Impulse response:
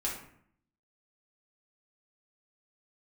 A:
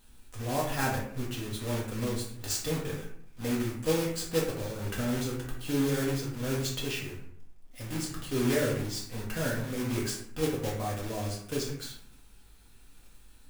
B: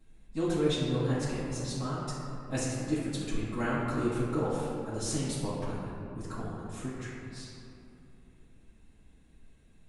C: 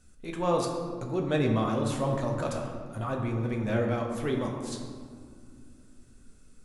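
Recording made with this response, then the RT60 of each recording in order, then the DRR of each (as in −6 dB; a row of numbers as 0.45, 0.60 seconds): A; 0.65, 2.9, 2.2 seconds; −4.5, −11.0, 1.0 decibels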